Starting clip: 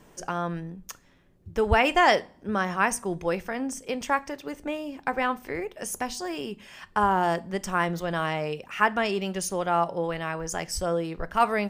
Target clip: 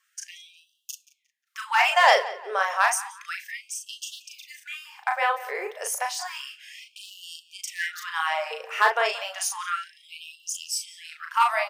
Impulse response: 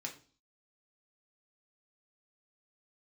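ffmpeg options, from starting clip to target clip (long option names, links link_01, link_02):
-filter_complex "[0:a]agate=range=-12dB:threshold=-49dB:ratio=16:detection=peak,lowshelf=frequency=270:gain=-10,aeval=exprs='clip(val(0),-1,0.2)':channel_layout=same,asplit=2[link_01][link_02];[link_02]adelay=37,volume=-4dB[link_03];[link_01][link_03]amix=inputs=2:normalize=0,asplit=2[link_04][link_05];[link_05]adelay=178,lowpass=frequency=3700:poles=1,volume=-16.5dB,asplit=2[link_06][link_07];[link_07]adelay=178,lowpass=frequency=3700:poles=1,volume=0.35,asplit=2[link_08][link_09];[link_09]adelay=178,lowpass=frequency=3700:poles=1,volume=0.35[link_10];[link_04][link_06][link_08][link_10]amix=inputs=4:normalize=0,afftfilt=real='re*gte(b*sr/1024,380*pow(2700/380,0.5+0.5*sin(2*PI*0.31*pts/sr)))':imag='im*gte(b*sr/1024,380*pow(2700/380,0.5+0.5*sin(2*PI*0.31*pts/sr)))':win_size=1024:overlap=0.75,volume=3dB"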